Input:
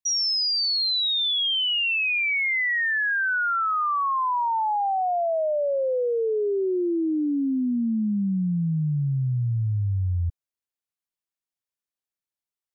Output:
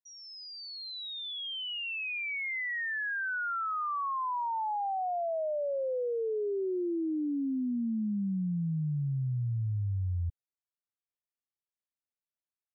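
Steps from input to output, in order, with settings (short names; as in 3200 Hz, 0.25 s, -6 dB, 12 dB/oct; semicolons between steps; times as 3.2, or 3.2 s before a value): air absorption 340 m; gain -7 dB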